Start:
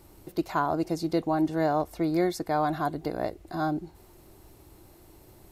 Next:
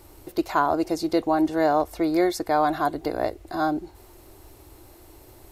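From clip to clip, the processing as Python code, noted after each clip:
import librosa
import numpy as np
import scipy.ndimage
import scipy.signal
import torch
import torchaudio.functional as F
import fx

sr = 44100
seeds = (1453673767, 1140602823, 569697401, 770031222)

y = fx.peak_eq(x, sr, hz=170.0, db=-13.0, octaves=0.66)
y = F.gain(torch.from_numpy(y), 5.5).numpy()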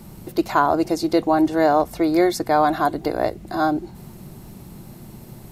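y = fx.dmg_noise_band(x, sr, seeds[0], low_hz=110.0, high_hz=230.0, level_db=-46.0)
y = F.gain(torch.from_numpy(y), 4.0).numpy()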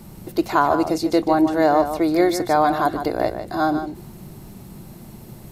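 y = x + 10.0 ** (-9.5 / 20.0) * np.pad(x, (int(150 * sr / 1000.0), 0))[:len(x)]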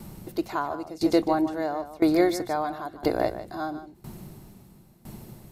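y = fx.tremolo_decay(x, sr, direction='decaying', hz=0.99, depth_db=19)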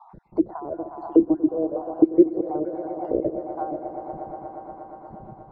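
y = fx.spec_dropout(x, sr, seeds[1], share_pct=65)
y = fx.echo_swell(y, sr, ms=119, loudest=5, wet_db=-16)
y = fx.envelope_lowpass(y, sr, base_hz=340.0, top_hz=1000.0, q=3.0, full_db=-21.5, direction='down')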